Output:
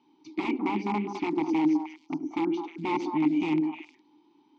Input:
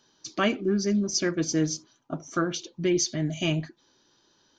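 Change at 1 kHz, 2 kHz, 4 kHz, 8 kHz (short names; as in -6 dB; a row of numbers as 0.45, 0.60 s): +5.0 dB, -4.5 dB, -13.0 dB, under -25 dB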